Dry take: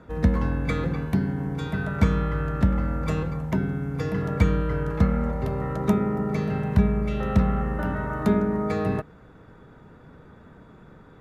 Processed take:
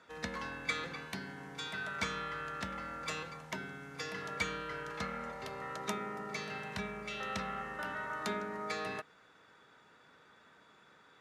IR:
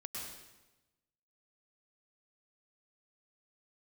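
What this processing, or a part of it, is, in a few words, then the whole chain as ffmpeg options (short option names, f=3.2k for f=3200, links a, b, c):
piezo pickup straight into a mixer: -af "lowpass=5.4k,aderivative,volume=9dB"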